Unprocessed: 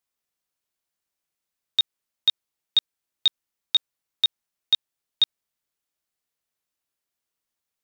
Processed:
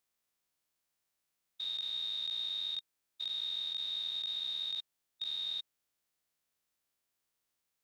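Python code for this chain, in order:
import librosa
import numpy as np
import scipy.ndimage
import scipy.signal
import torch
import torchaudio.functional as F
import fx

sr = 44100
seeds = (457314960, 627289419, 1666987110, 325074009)

y = fx.spec_steps(x, sr, hold_ms=400)
y = F.gain(torch.from_numpy(y), 2.0).numpy()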